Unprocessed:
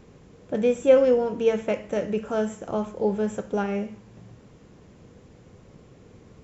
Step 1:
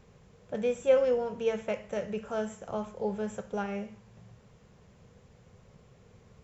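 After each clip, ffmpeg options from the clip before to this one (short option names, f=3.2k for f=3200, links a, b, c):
-af "equalizer=f=300:t=o:w=0.51:g=-14.5,volume=-5dB"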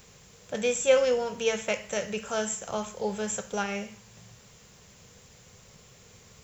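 -af "crystalizer=i=9:c=0"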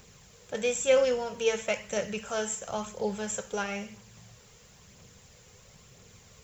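-af "aphaser=in_gain=1:out_gain=1:delay=2.5:decay=0.32:speed=1:type=triangular,volume=-2dB"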